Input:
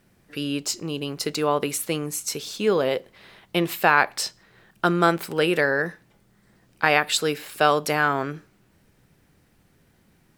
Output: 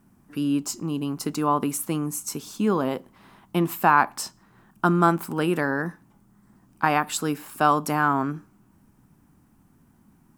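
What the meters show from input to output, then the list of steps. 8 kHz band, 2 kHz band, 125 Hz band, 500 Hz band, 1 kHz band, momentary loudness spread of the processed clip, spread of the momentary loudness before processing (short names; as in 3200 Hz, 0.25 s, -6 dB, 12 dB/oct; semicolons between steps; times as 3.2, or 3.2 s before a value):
-2.5 dB, -5.0 dB, +3.0 dB, -5.0 dB, +1.5 dB, 11 LU, 10 LU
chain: ten-band EQ 250 Hz +9 dB, 500 Hz -11 dB, 1000 Hz +8 dB, 2000 Hz -8 dB, 4000 Hz -10 dB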